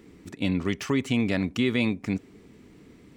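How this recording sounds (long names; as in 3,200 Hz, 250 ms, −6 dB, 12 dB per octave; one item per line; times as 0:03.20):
background noise floor −53 dBFS
spectral slope −5.5 dB per octave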